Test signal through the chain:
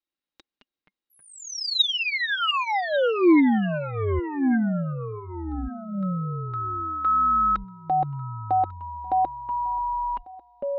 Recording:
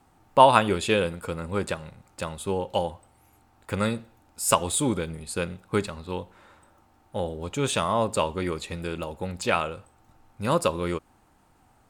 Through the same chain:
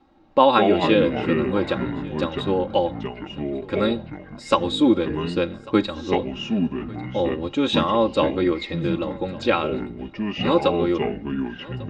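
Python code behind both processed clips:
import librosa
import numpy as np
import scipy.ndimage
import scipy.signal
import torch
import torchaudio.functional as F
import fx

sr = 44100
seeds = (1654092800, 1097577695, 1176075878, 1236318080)

p1 = scipy.signal.sosfilt(scipy.signal.butter(4, 4900.0, 'lowpass', fs=sr, output='sos'), x)
p2 = p1 + 0.68 * np.pad(p1, (int(3.7 * sr / 1000.0), 0))[:len(p1)]
p3 = fx.rider(p2, sr, range_db=3, speed_s=2.0)
p4 = fx.small_body(p3, sr, hz=(350.0, 3800.0), ring_ms=30, db=12)
p5 = fx.echo_pitch(p4, sr, ms=83, semitones=-5, count=3, db_per_echo=-6.0)
p6 = p5 + fx.echo_single(p5, sr, ms=1146, db=-22.0, dry=0)
y = p6 * librosa.db_to_amplitude(-1.0)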